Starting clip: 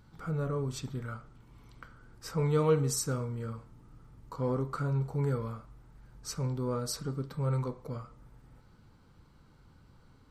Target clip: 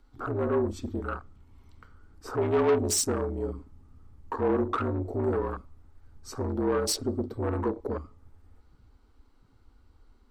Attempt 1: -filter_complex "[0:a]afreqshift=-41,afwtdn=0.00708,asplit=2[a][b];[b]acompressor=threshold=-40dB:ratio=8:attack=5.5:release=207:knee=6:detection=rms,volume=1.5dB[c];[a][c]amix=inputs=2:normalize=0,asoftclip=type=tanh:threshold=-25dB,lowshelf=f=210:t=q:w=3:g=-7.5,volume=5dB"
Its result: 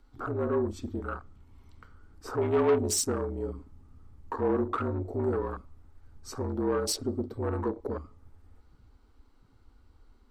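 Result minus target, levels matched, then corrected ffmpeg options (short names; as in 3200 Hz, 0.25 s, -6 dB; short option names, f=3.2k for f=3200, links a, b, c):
compressor: peak gain reduction +9.5 dB
-filter_complex "[0:a]afreqshift=-41,afwtdn=0.00708,asplit=2[a][b];[b]acompressor=threshold=-29dB:ratio=8:attack=5.5:release=207:knee=6:detection=rms,volume=1.5dB[c];[a][c]amix=inputs=2:normalize=0,asoftclip=type=tanh:threshold=-25dB,lowshelf=f=210:t=q:w=3:g=-7.5,volume=5dB"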